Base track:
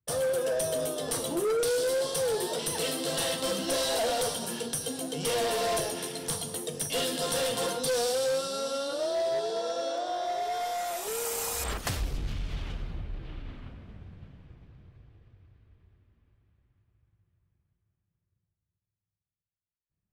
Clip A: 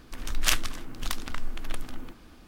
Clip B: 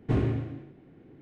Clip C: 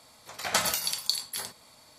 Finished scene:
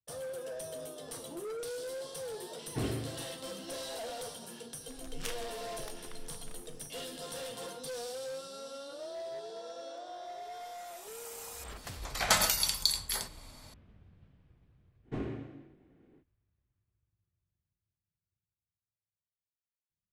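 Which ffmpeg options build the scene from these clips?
ffmpeg -i bed.wav -i cue0.wav -i cue1.wav -i cue2.wav -filter_complex "[2:a]asplit=2[link_01][link_02];[0:a]volume=-12.5dB[link_03];[link_01]lowshelf=frequency=260:gain=-6.5[link_04];[3:a]acontrast=79[link_05];[link_02]equalizer=frequency=95:width_type=o:width=0.72:gain=-13.5[link_06];[link_04]atrim=end=1.21,asetpts=PTS-STARTPTS,volume=-5dB,afade=type=in:duration=0.004:curve=hsin,afade=type=out:start_time=1.206:duration=0.004:curve=hsin,adelay=2670[link_07];[1:a]atrim=end=2.47,asetpts=PTS-STARTPTS,volume=-17dB,afade=type=in:duration=0.004:curve=hsin,afade=type=out:start_time=2.466:duration=0.004:curve=hsin,adelay=210357S[link_08];[link_05]atrim=end=1.98,asetpts=PTS-STARTPTS,volume=-6.5dB,afade=type=in:duration=0.004:curve=hsin,afade=type=out:start_time=1.976:duration=0.004:curve=hsin,adelay=11760[link_09];[link_06]atrim=end=1.21,asetpts=PTS-STARTPTS,volume=-8.5dB,afade=type=in:duration=0.05,afade=type=out:start_time=1.16:duration=0.05,adelay=15030[link_10];[link_03][link_07][link_08][link_09][link_10]amix=inputs=5:normalize=0" out.wav

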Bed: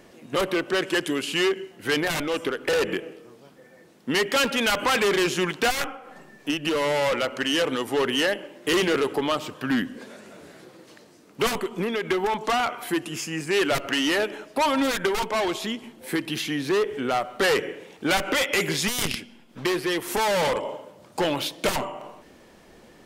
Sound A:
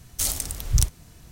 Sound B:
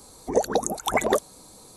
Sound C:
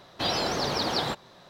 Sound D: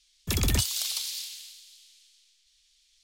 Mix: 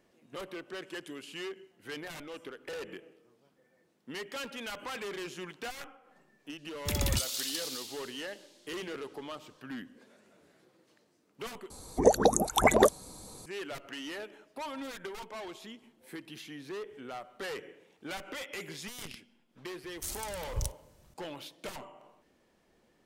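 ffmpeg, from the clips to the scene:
ffmpeg -i bed.wav -i cue0.wav -i cue1.wav -i cue2.wav -i cue3.wav -filter_complex "[0:a]volume=-17.5dB[link_01];[2:a]lowshelf=frequency=160:gain=6.5[link_02];[link_01]asplit=2[link_03][link_04];[link_03]atrim=end=11.704[link_05];[link_02]atrim=end=1.76,asetpts=PTS-STARTPTS,volume=-0.5dB[link_06];[link_04]atrim=start=13.456[link_07];[4:a]atrim=end=3.03,asetpts=PTS-STARTPTS,volume=-5dB,afade=type=in:duration=0.004:curve=hsin,afade=type=out:start_time=3.026:duration=0.004:curve=hsin,adelay=290178S[link_08];[1:a]atrim=end=1.31,asetpts=PTS-STARTPTS,volume=-14dB,afade=type=in:duration=0.004:curve=hsin,afade=type=out:start_time=1.306:duration=0.004:curve=hsin,adelay=19830[link_09];[link_05][link_06]acrossfade=duration=0.004:curve1=hsin:curve2=hsin[link_10];[link_10][link_07]acrossfade=duration=0.004:curve1=hsin:curve2=hsin[link_11];[link_11][link_08][link_09]amix=inputs=3:normalize=0" out.wav

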